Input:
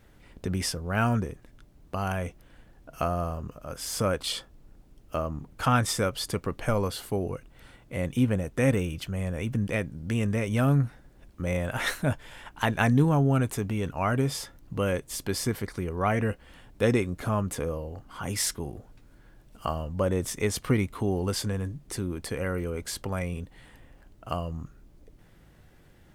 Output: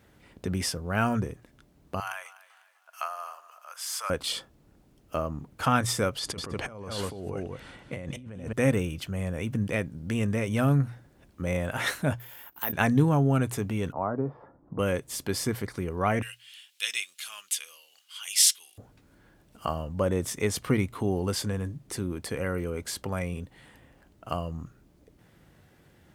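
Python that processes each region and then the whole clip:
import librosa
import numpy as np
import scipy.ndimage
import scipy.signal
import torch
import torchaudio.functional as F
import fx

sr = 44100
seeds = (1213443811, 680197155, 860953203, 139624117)

y = fx.chain(x, sr, fx.highpass(hz=940.0, slope=24),
    fx.echo_feedback(ms=249, feedback_pct=40, wet_db=-18), at=(2.0, 4.1))
y = fx.chain(y, sr, fx.lowpass(hz=8200.0, slope=12),
    fx.echo_single(ms=198, db=-11.0),
    fx.over_compress(threshold_db=-36.0, ratio=-1.0), at=(6.18, 8.53))
y = fx.chain(y, sr, fx.peak_eq(hz=98.0, db=-10.0, octaves=2.2),
    fx.level_steps(step_db=17),
    fx.resample_bad(factor=3, down='none', up='zero_stuff'), at=(12.19, 12.73))
y = fx.chain(y, sr, fx.lowpass(hz=1100.0, slope=24),
    fx.low_shelf(hz=160.0, db=-11.0),
    fx.band_squash(depth_pct=40), at=(13.92, 14.79))
y = fx.chain(y, sr, fx.highpass_res(hz=3000.0, q=2.5),
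    fx.peak_eq(hz=9700.0, db=8.0, octaves=2.4), at=(16.22, 18.78))
y = scipy.signal.sosfilt(scipy.signal.butter(2, 68.0, 'highpass', fs=sr, output='sos'), y)
y = fx.hum_notches(y, sr, base_hz=60, count=2)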